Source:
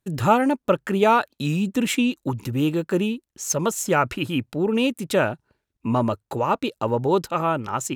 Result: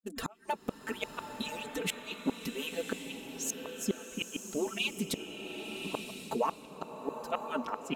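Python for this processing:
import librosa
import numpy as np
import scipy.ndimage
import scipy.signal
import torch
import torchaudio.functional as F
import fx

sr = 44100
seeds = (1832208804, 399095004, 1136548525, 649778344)

y = fx.hpss_only(x, sr, part='percussive')
y = y + 0.66 * np.pad(y, (int(4.5 * sr / 1000.0), 0))[:len(y)]
y = fx.gate_flip(y, sr, shuts_db=-14.0, range_db=-34)
y = fx.rev_bloom(y, sr, seeds[0], attack_ms=1100, drr_db=5.0)
y = F.gain(torch.from_numpy(y), -5.5).numpy()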